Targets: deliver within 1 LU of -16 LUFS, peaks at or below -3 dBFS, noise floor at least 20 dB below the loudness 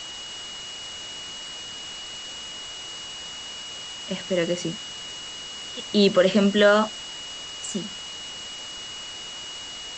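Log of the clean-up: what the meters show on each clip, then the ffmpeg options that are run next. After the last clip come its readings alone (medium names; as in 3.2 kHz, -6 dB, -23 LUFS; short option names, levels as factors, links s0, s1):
steady tone 2.9 kHz; tone level -36 dBFS; noise floor -37 dBFS; noise floor target -47 dBFS; loudness -27.0 LUFS; peak level -6.0 dBFS; loudness target -16.0 LUFS
-> -af "bandreject=f=2900:w=30"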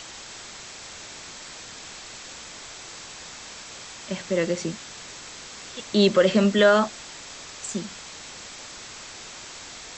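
steady tone not found; noise floor -41 dBFS; noise floor target -43 dBFS
-> -af "afftdn=nr=6:nf=-41"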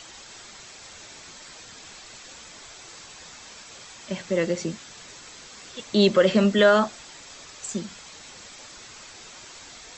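noise floor -45 dBFS; loudness -22.5 LUFS; peak level -6.5 dBFS; loudness target -16.0 LUFS
-> -af "volume=2.11,alimiter=limit=0.708:level=0:latency=1"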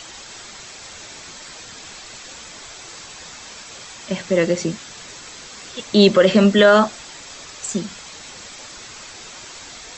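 loudness -16.5 LUFS; peak level -3.0 dBFS; noise floor -39 dBFS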